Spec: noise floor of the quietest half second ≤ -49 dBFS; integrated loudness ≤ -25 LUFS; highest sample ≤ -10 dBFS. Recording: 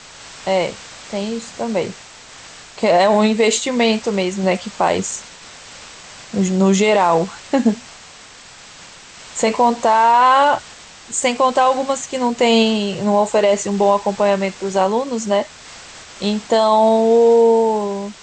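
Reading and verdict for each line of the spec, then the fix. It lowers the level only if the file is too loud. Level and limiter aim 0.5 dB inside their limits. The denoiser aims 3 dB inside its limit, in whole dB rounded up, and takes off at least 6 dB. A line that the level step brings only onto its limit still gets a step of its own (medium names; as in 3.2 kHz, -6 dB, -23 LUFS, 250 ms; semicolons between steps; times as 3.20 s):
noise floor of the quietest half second -41 dBFS: fail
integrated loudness -16.5 LUFS: fail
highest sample -4.5 dBFS: fail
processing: trim -9 dB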